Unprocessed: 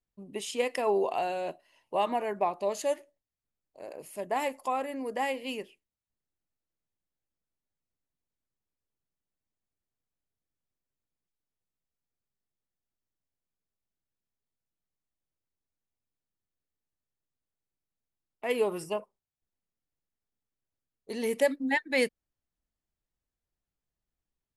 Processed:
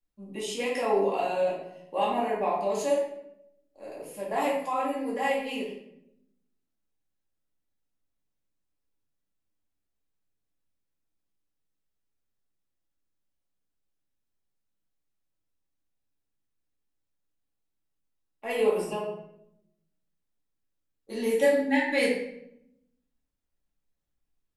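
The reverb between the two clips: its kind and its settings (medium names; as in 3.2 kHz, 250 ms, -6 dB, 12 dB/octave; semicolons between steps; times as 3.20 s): simulated room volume 200 m³, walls mixed, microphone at 2.3 m; trim -5.5 dB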